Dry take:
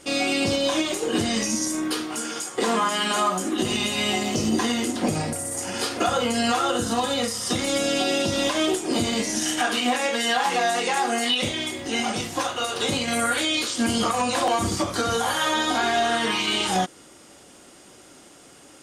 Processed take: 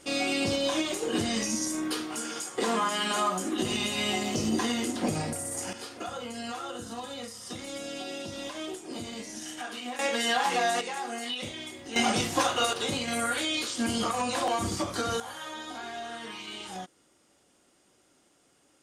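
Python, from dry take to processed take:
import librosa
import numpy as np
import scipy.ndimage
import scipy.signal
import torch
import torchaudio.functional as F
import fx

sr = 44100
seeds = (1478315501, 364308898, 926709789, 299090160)

y = fx.gain(x, sr, db=fx.steps((0.0, -5.0), (5.73, -14.5), (9.99, -4.0), (10.81, -11.5), (11.96, 0.5), (12.73, -6.0), (15.2, -16.5)))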